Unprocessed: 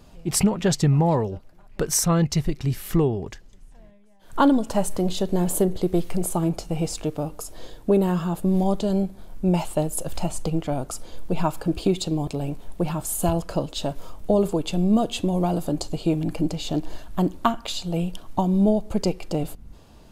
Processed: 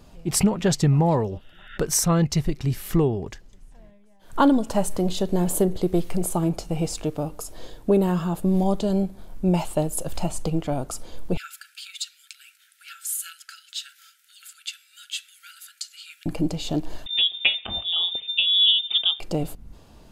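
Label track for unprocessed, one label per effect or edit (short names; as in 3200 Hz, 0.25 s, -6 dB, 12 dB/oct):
1.330000	1.750000	spectral repair 1300–3800 Hz
11.370000	16.260000	brick-wall FIR high-pass 1300 Hz
17.060000	19.200000	inverted band carrier 3600 Hz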